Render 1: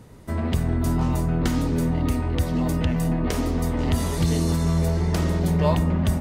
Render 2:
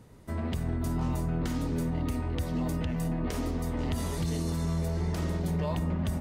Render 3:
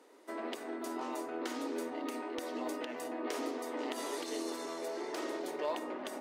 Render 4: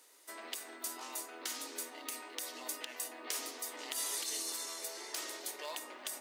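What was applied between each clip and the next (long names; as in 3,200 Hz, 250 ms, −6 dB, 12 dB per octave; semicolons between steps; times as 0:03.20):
brickwall limiter −15 dBFS, peak gain reduction 6.5 dB; level −7 dB
Butterworth high-pass 290 Hz 48 dB per octave; high-shelf EQ 10,000 Hz −8.5 dB; gain into a clipping stage and back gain 27.5 dB
first-order pre-emphasis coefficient 0.97; level +10.5 dB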